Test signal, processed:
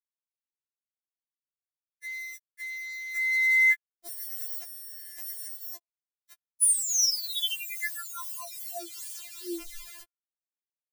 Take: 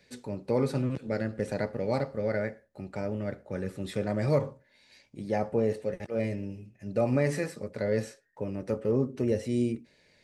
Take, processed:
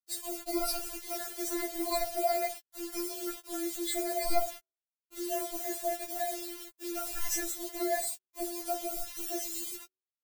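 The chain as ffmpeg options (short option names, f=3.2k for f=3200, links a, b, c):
-af "afftfilt=real='re*pow(10,13/40*sin(2*PI*(0.99*log(max(b,1)*sr/1024/100)/log(2)-(0.5)*(pts-256)/sr)))':imag='im*pow(10,13/40*sin(2*PI*(0.99*log(max(b,1)*sr/1024/100)/log(2)-(0.5)*(pts-256)/sr)))':win_size=1024:overlap=0.75,equalizer=f=2.1k:t=o:w=2.8:g=-4,bandreject=f=1.2k:w=29,acrusher=bits=7:mix=0:aa=0.000001,aeval=exprs='val(0)*sin(2*PI*150*n/s)':c=same,crystalizer=i=9.5:c=0,bandreject=f=187.6:t=h:w=4,bandreject=f=375.2:t=h:w=4,bandreject=f=562.8:t=h:w=4,bandreject=f=750.4:t=h:w=4,bandreject=f=938:t=h:w=4,bandreject=f=1.1256k:t=h:w=4,bandreject=f=1.3132k:t=h:w=4,bandreject=f=1.5008k:t=h:w=4,bandreject=f=1.6884k:t=h:w=4,afftfilt=real='re*4*eq(mod(b,16),0)':imag='im*4*eq(mod(b,16),0)':win_size=2048:overlap=0.75,volume=-3.5dB"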